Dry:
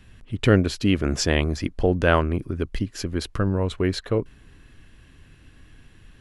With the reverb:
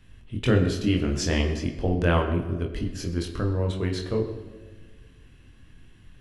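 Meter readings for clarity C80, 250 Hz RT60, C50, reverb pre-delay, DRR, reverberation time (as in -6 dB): 10.0 dB, 1.9 s, 8.0 dB, 23 ms, 1.5 dB, 1.4 s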